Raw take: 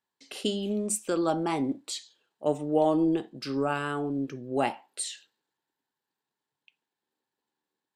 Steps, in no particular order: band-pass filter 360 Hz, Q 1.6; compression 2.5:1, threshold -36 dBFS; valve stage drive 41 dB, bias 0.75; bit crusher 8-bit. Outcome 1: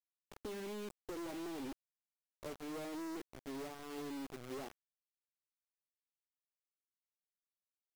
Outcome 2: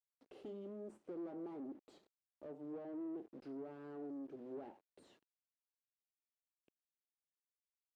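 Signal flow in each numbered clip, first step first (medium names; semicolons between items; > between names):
compression > band-pass filter > valve stage > bit crusher; bit crusher > compression > valve stage > band-pass filter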